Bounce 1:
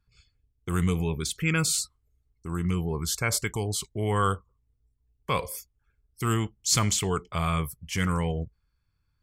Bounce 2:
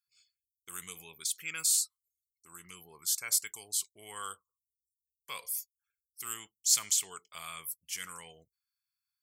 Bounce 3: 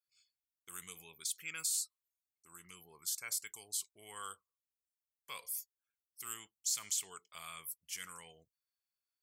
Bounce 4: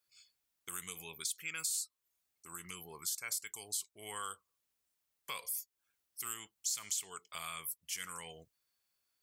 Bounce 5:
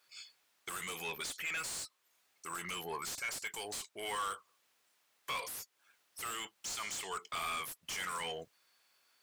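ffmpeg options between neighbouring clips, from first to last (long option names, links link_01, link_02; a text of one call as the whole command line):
ffmpeg -i in.wav -af "aderivative" out.wav
ffmpeg -i in.wav -af "alimiter=limit=-19dB:level=0:latency=1:release=137,volume=-5dB" out.wav
ffmpeg -i in.wav -af "acompressor=threshold=-53dB:ratio=2,volume=10dB" out.wav
ffmpeg -i in.wav -filter_complex "[0:a]asplit=2[link_01][link_02];[link_02]highpass=frequency=720:poles=1,volume=29dB,asoftclip=type=tanh:threshold=-22dB[link_03];[link_01][link_03]amix=inputs=2:normalize=0,lowpass=frequency=2700:poles=1,volume=-6dB,volume=-5dB" out.wav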